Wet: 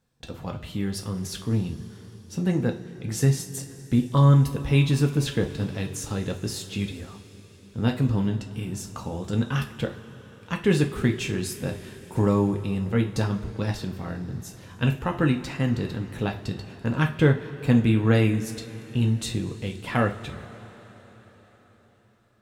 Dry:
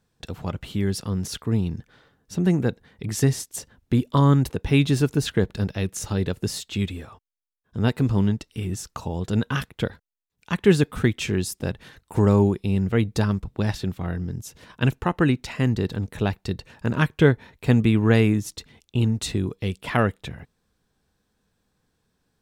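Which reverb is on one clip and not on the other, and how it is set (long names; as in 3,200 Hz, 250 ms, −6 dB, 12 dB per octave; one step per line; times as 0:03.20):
coupled-rooms reverb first 0.31 s, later 5 s, from −20 dB, DRR 2.5 dB
level −4 dB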